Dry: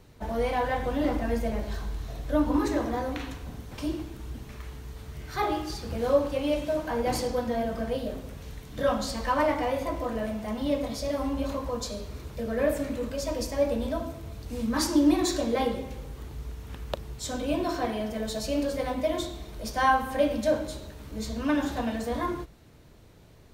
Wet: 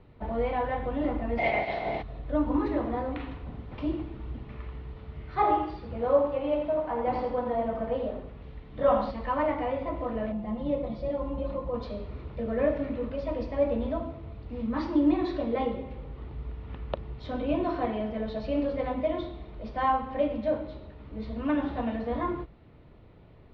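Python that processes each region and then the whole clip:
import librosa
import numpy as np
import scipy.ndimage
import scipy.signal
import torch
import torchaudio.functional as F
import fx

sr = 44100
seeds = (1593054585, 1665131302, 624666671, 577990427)

y = fx.spec_clip(x, sr, under_db=29, at=(1.37, 2.01), fade=0.02)
y = fx.peak_eq(y, sr, hz=1200.0, db=-9.0, octaves=0.85, at=(1.37, 2.01), fade=0.02)
y = fx.small_body(y, sr, hz=(700.0, 2100.0), ring_ms=25, db=18, at=(1.37, 2.01), fade=0.02)
y = fx.chain(y, sr, fx.dynamic_eq(hz=880.0, q=0.72, threshold_db=-40.0, ratio=4.0, max_db=8),
    fx.echo_single(ms=84, db=-6.5), at=(4.42, 9.11))
y = fx.chain(y, sr, fx.lowpass(hz=5200.0, slope=12),
    fx.peak_eq(hz=1900.0, db=-9.5, octaves=2.8),
    fx.comb(ms=5.7, depth=0.71), at=(10.32, 11.74))
y = scipy.signal.sosfilt(scipy.signal.bessel(8, 2200.0, 'lowpass', norm='mag', fs=sr, output='sos'), y)
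y = fx.notch(y, sr, hz=1600.0, q=9.6)
y = fx.rider(y, sr, range_db=4, speed_s=2.0)
y = y * 10.0 ** (-3.0 / 20.0)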